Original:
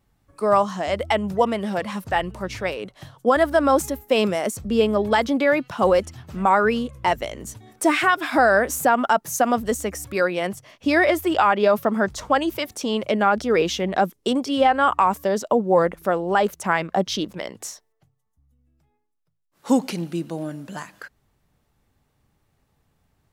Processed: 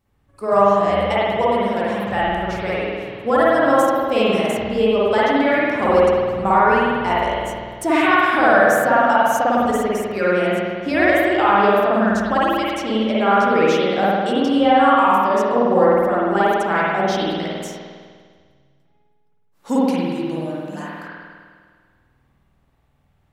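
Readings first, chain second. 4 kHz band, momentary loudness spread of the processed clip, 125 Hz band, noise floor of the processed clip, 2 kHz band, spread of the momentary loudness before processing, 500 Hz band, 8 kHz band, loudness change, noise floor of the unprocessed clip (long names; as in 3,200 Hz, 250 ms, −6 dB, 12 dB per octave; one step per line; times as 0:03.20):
+2.0 dB, 11 LU, +3.0 dB, −60 dBFS, +4.0 dB, 12 LU, +4.0 dB, −4.5 dB, +4.0 dB, −70 dBFS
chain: spring reverb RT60 1.8 s, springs 50 ms, chirp 55 ms, DRR −8 dB
level −4.5 dB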